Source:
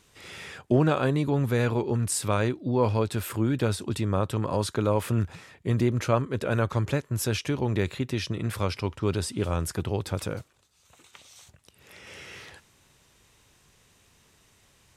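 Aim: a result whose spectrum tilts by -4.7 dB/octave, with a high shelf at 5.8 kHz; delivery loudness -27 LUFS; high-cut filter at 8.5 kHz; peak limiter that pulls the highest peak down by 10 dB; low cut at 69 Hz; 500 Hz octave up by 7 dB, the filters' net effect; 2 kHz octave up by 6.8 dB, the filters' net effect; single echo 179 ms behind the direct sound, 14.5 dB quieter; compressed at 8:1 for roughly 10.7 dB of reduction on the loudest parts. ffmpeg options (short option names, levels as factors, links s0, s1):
-af "highpass=69,lowpass=8500,equalizer=f=500:t=o:g=8,equalizer=f=2000:t=o:g=8,highshelf=f=5800:g=5.5,acompressor=threshold=0.0708:ratio=8,alimiter=limit=0.0891:level=0:latency=1,aecho=1:1:179:0.188,volume=1.88"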